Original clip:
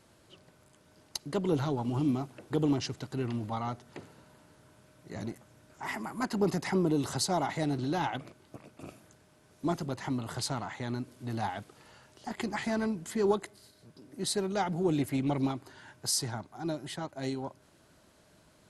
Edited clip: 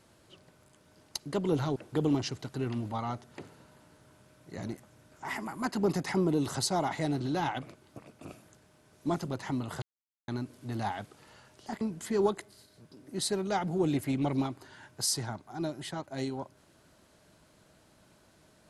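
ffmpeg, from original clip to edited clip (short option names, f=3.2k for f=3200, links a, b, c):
-filter_complex "[0:a]asplit=5[a][b][c][d][e];[a]atrim=end=1.762[f];[b]atrim=start=2.338:end=10.4,asetpts=PTS-STARTPTS,afade=t=out:st=8.058:d=0.004:c=hsin[g];[c]atrim=start=10.4:end=10.86,asetpts=PTS-STARTPTS,volume=0[h];[d]atrim=start=10.86:end=12.392,asetpts=PTS-STARTPTS,afade=t=in:d=0.004:c=hsin[i];[e]atrim=start=12.858[j];[g][h][i]concat=n=3:v=0:a=1[k];[f][k]acrossfade=d=0.004:c1=hsin:c2=hsin[l];[l][j]acrossfade=d=0.004:c1=hsin:c2=hsin"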